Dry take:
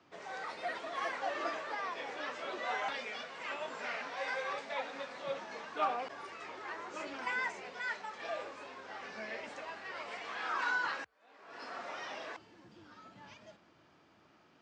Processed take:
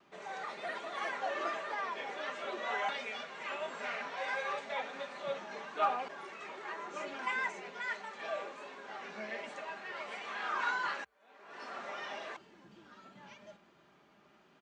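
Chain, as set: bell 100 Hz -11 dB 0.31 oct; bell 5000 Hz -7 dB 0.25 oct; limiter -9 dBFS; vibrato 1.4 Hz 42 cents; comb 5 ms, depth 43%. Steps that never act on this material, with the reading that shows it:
limiter -9 dBFS: input peak -20.5 dBFS

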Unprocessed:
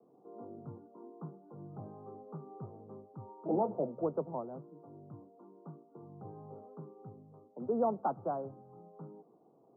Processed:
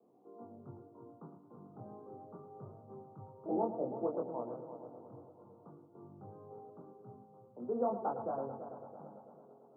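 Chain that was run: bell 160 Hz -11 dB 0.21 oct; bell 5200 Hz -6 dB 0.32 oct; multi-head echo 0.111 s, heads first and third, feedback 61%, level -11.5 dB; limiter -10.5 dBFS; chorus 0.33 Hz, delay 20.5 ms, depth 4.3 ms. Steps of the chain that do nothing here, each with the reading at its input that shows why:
bell 5200 Hz: input band ends at 1300 Hz; limiter -10.5 dBFS: input peak -19.5 dBFS

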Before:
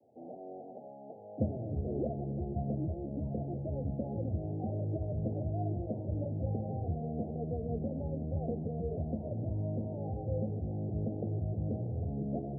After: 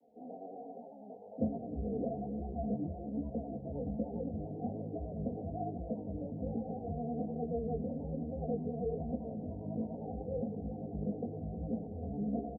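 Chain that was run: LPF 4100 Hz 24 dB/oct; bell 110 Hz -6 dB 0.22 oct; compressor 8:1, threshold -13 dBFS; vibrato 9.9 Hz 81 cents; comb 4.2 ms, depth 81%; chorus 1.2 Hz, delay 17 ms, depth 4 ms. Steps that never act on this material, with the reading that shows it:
LPF 4100 Hz: input band ends at 810 Hz; compressor, threshold -13 dBFS: input peak -22.0 dBFS

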